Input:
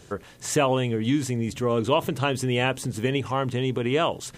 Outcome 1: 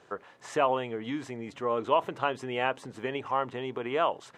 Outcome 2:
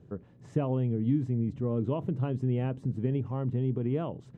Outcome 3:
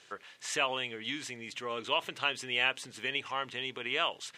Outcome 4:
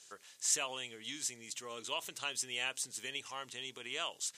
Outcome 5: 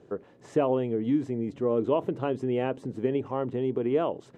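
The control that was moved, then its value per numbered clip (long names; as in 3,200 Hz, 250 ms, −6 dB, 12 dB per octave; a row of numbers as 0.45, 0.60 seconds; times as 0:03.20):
resonant band-pass, frequency: 990, 150, 2,600, 6,800, 380 Hertz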